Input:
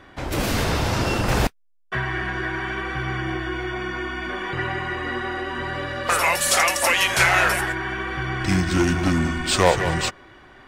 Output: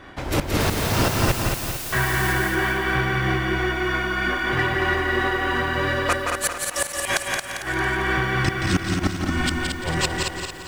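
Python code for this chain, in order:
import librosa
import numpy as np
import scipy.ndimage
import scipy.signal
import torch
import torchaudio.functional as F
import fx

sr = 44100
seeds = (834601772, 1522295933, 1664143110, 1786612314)

p1 = fx.tremolo_shape(x, sr, shape='triangle', hz=3.1, depth_pct=65)
p2 = fx.gate_flip(p1, sr, shuts_db=-13.0, range_db=-31)
p3 = np.clip(p2, -10.0 ** (-27.5 / 20.0), 10.0 ** (-27.5 / 20.0))
p4 = p2 + (p3 * librosa.db_to_amplitude(-6.0))
p5 = fx.dmg_noise_colour(p4, sr, seeds[0], colour='white', level_db=-37.0, at=(0.59, 2.32), fade=0.02)
p6 = p5 + fx.echo_feedback(p5, sr, ms=225, feedback_pct=42, wet_db=-5, dry=0)
p7 = fx.echo_crushed(p6, sr, ms=173, feedback_pct=35, bits=8, wet_db=-4.5)
y = p7 * librosa.db_to_amplitude(2.5)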